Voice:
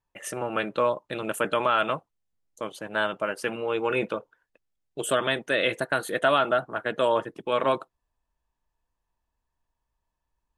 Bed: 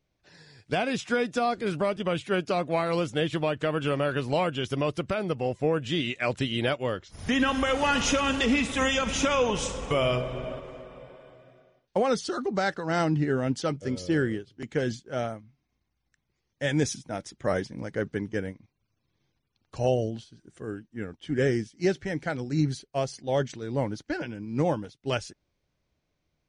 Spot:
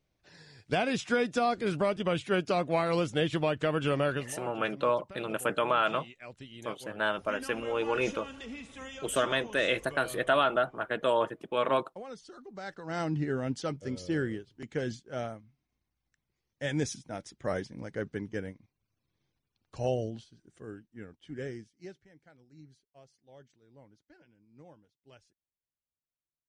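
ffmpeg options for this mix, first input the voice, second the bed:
ffmpeg -i stem1.wav -i stem2.wav -filter_complex "[0:a]adelay=4050,volume=-3.5dB[link_01];[1:a]volume=12dB,afade=type=out:start_time=4.1:duration=0.22:silence=0.133352,afade=type=in:start_time=12.52:duration=0.66:silence=0.211349,afade=type=out:start_time=20.13:duration=1.95:silence=0.0707946[link_02];[link_01][link_02]amix=inputs=2:normalize=0" out.wav

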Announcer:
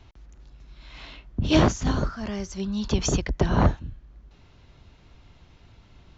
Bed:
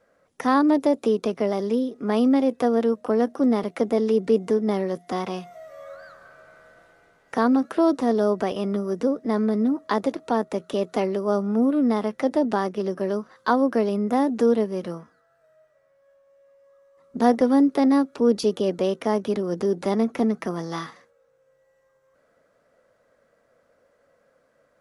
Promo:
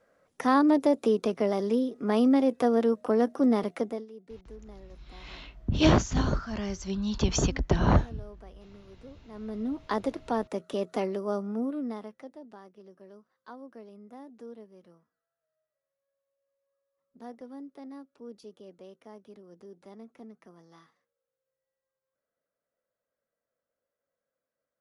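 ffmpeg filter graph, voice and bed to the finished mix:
ffmpeg -i stem1.wav -i stem2.wav -filter_complex "[0:a]adelay=4300,volume=-2dB[link_01];[1:a]volume=17dB,afade=type=out:start_time=3.66:duration=0.4:silence=0.0707946,afade=type=in:start_time=9.29:duration=0.65:silence=0.1,afade=type=out:start_time=11.04:duration=1.29:silence=0.105925[link_02];[link_01][link_02]amix=inputs=2:normalize=0" out.wav

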